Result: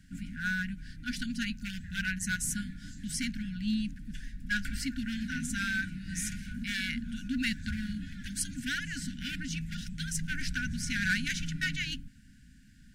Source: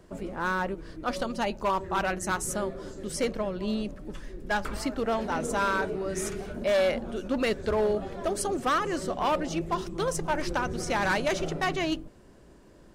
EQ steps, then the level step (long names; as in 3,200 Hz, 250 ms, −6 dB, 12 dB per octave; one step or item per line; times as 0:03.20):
linear-phase brick-wall band-stop 280–1,400 Hz
0.0 dB